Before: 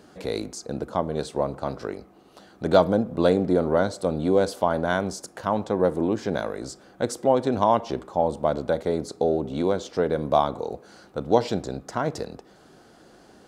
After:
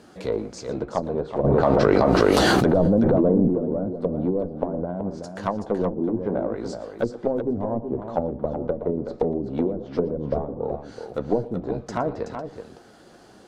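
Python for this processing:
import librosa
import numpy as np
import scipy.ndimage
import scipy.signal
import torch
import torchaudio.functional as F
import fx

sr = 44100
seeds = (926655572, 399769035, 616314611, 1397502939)

p1 = fx.block_float(x, sr, bits=7)
p2 = fx.cheby_harmonics(p1, sr, harmonics=(3, 4, 5, 8), levels_db=(-18, -24, -28, -34), full_scale_db=-3.0)
p3 = fx.dynamic_eq(p2, sr, hz=730.0, q=0.82, threshold_db=-31.0, ratio=4.0, max_db=3)
p4 = fx.chorus_voices(p3, sr, voices=4, hz=0.59, base_ms=13, depth_ms=4.5, mix_pct=25)
p5 = 10.0 ** (-16.0 / 20.0) * np.tanh(p4 / 10.0 ** (-16.0 / 20.0))
p6 = p4 + F.gain(torch.from_numpy(p5), -10.5).numpy()
p7 = fx.env_lowpass_down(p6, sr, base_hz=320.0, full_db=-20.5)
p8 = fx.echo_multitap(p7, sr, ms=(117, 376), db=(-19.0, -8.0))
p9 = fx.env_flatten(p8, sr, amount_pct=100, at=(1.43, 3.48), fade=0.02)
y = F.gain(torch.from_numpy(p9), 3.0).numpy()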